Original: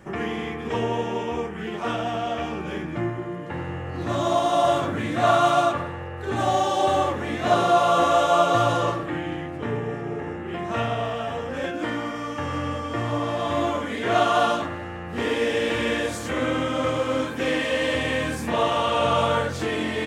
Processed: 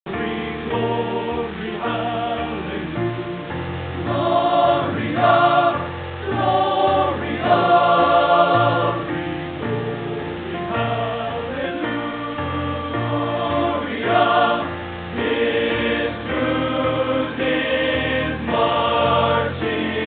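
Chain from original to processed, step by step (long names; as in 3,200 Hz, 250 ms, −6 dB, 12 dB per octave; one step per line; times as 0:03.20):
bit-depth reduction 6 bits, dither none
downsampling to 8,000 Hz
level +4 dB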